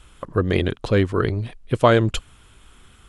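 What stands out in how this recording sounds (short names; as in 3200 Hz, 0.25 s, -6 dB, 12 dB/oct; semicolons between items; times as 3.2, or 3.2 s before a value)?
noise floor -52 dBFS; spectral tilt -5.5 dB/oct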